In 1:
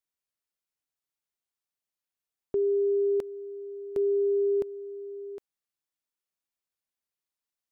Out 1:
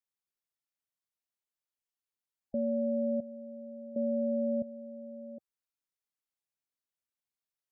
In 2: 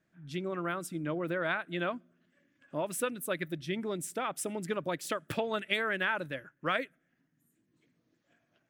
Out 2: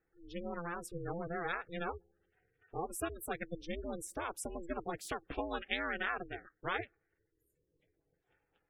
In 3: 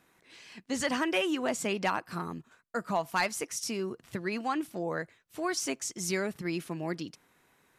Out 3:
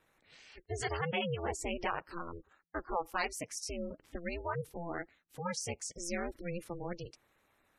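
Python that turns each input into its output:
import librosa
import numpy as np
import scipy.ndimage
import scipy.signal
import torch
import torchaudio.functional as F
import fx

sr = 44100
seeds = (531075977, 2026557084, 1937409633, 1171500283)

y = x * np.sin(2.0 * np.pi * 170.0 * np.arange(len(x)) / sr)
y = fx.spec_gate(y, sr, threshold_db=-20, keep='strong')
y = F.gain(torch.from_numpy(y), -2.5).numpy()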